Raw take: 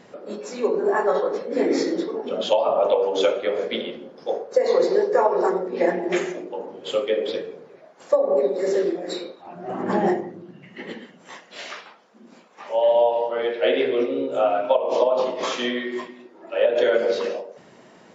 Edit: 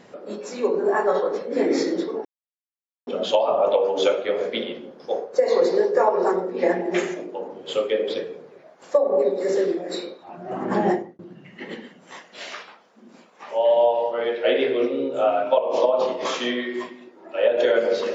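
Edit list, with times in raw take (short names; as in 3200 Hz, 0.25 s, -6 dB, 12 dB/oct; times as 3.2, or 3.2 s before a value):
2.25 insert silence 0.82 s
10.09–10.37 fade out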